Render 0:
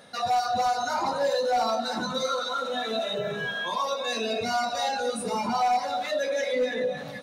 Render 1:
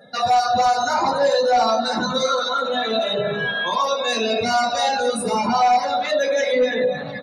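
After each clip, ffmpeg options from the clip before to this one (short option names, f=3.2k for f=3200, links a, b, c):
-af "afftdn=nr=26:nf=-49,volume=7.5dB"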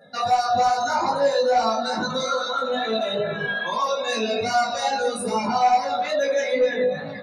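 -af "equalizer=f=3.3k:w=4.7:g=-5.5,flanger=delay=18:depth=2.3:speed=2.4"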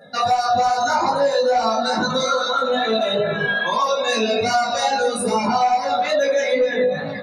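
-af "acompressor=threshold=-20dB:ratio=6,volume=5.5dB"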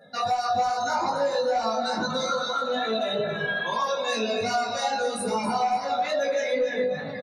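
-af "aecho=1:1:275|550:0.251|0.0427,volume=-7dB"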